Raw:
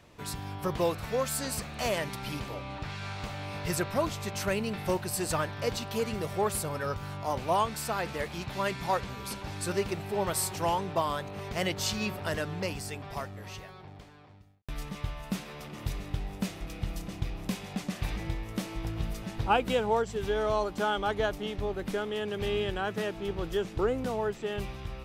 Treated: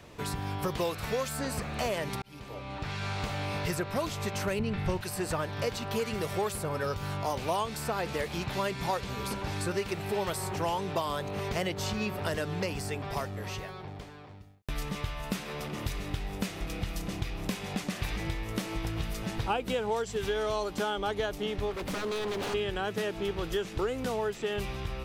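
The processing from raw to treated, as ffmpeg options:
ffmpeg -i in.wav -filter_complex "[0:a]asettb=1/sr,asplit=3[link_01][link_02][link_03];[link_01]atrim=end=4.594[link_04];[link_02]atrim=start=4.59:end=5.01,asetpts=PTS-STARTPTS,afade=type=in:duration=0.004:curve=qsin,afade=type=out:start_time=0.416:duration=0.004:curve=qsin,aemphasis=mode=reproduction:type=riaa[link_05];[link_03]atrim=start=5.006[link_06];[link_04][link_05]acrossfade=duration=0.004:curve1=hsin:curve2=qsin[link_07];[link_07][link_06]acrossfade=duration=0.004:curve1=qsin:curve2=hsin,asplit=3[link_08][link_09][link_10];[link_08]afade=type=out:start_time=21.7:duration=0.02[link_11];[link_09]aeval=exprs='0.0224*(abs(mod(val(0)/0.0224+3,4)-2)-1)':channel_layout=same,afade=type=in:start_time=21.7:duration=0.02,afade=type=out:start_time=22.53:duration=0.02[link_12];[link_10]afade=type=in:start_time=22.53:duration=0.02[link_13];[link_11][link_12][link_13]amix=inputs=3:normalize=0,asplit=2[link_14][link_15];[link_14]atrim=end=2.22,asetpts=PTS-STARTPTS,afade=type=out:start_time=2.216:duration=0.004:curve=hsin[link_16];[link_15]atrim=start=2.22,asetpts=PTS-STARTPTS,afade=type=in:duration=0.95[link_17];[link_16][link_17]concat=n=2:v=0:a=1,equalizer=frequency=430:width=3.8:gain=3,acrossover=split=1100|2400[link_18][link_19][link_20];[link_18]acompressor=threshold=-36dB:ratio=4[link_21];[link_19]acompressor=threshold=-47dB:ratio=4[link_22];[link_20]acompressor=threshold=-46dB:ratio=4[link_23];[link_21][link_22][link_23]amix=inputs=3:normalize=0,volume=5.5dB" out.wav

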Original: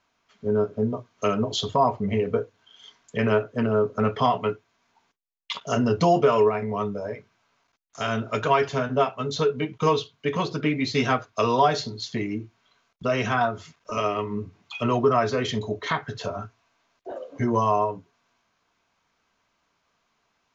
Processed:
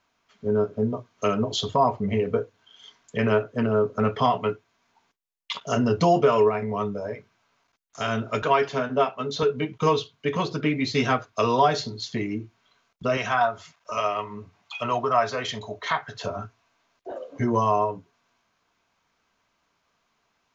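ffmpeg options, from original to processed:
ffmpeg -i in.wav -filter_complex "[0:a]asettb=1/sr,asplit=3[link_01][link_02][link_03];[link_01]atrim=end=8.424[link_04];[link_02]atrim=start=8.42:end=9.43,asetpts=PTS-STARTPTS,afade=type=in:duration=0.004:curve=qsin,afade=type=out:start_time=1.006:duration=0.004:curve=qsin,highpass=170,lowpass=6400[link_05];[link_03]atrim=start=9.426[link_06];[link_04][link_05]acrossfade=duration=0.004:curve1=hsin:curve2=qsin[link_07];[link_07][link_06]acrossfade=duration=0.004:curve1=qsin:curve2=hsin,asettb=1/sr,asplit=3[link_08][link_09][link_10];[link_08]atrim=end=13.174[link_11];[link_09]atrim=start=13.17:end=16.23,asetpts=PTS-STARTPTS,afade=type=in:duration=0.004:curve=qsin,afade=type=out:start_time=3.056:duration=0.004:curve=qsin,lowshelf=frequency=500:width_type=q:width=1.5:gain=-8[link_12];[link_10]atrim=start=16.226[link_13];[link_11][link_12]acrossfade=duration=0.004:curve1=hsin:curve2=qsin[link_14];[link_14][link_13]acrossfade=duration=0.004:curve1=qsin:curve2=hsin" out.wav

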